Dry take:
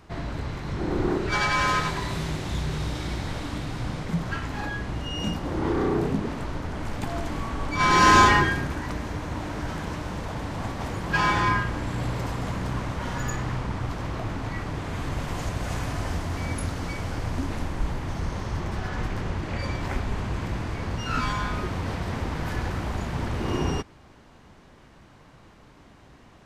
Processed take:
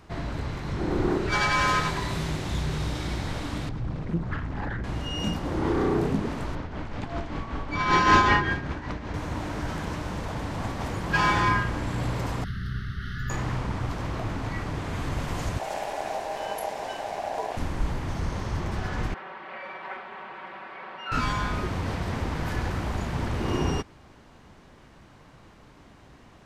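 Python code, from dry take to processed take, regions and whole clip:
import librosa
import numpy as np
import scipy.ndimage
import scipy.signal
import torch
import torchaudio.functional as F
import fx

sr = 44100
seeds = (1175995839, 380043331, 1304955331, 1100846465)

y = fx.chain(x, sr, fx.envelope_sharpen(power=1.5),
    fx.doppler_dist(depth_ms=0.92), at=(3.69, 4.84))
y = fx.chain(y, sr, fx.lowpass(hz=4500.0, slope=12),
    fx.tremolo_shape(shape='triangle', hz=5.2, depth_pct=60), at=(6.55, 9.14))
y = fx.chain(y, sr, fx.brickwall_bandstop(low_hz=420.0, high_hz=1100.0),
    fx.high_shelf(hz=5400.0, db=-7.5),
    fx.fixed_phaser(hz=1600.0, stages=8), at=(12.44, 13.3))
y = fx.chain(y, sr, fx.peak_eq(hz=590.0, db=-11.5, octaves=0.41),
    fx.ring_mod(carrier_hz=710.0), at=(15.59, 17.57))
y = fx.chain(y, sr, fx.highpass(hz=790.0, slope=12),
    fx.air_absorb(metres=490.0),
    fx.comb(ms=5.3, depth=0.91), at=(19.14, 21.12))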